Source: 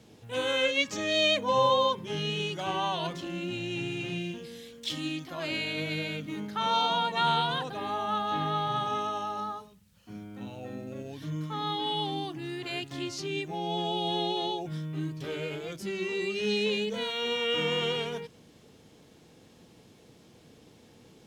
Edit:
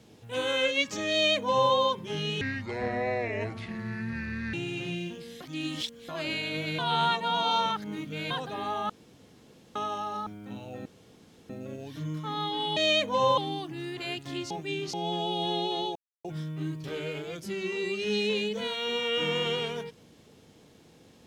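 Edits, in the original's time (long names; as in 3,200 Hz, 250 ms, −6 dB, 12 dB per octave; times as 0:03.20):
0:01.11–0:01.72: duplicate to 0:12.03
0:02.41–0:03.77: play speed 64%
0:04.64–0:05.32: reverse
0:06.02–0:07.54: reverse
0:08.13–0:08.99: fill with room tone
0:09.50–0:10.17: remove
0:10.76: splice in room tone 0.64 s
0:13.16–0:13.59: reverse
0:14.61: splice in silence 0.29 s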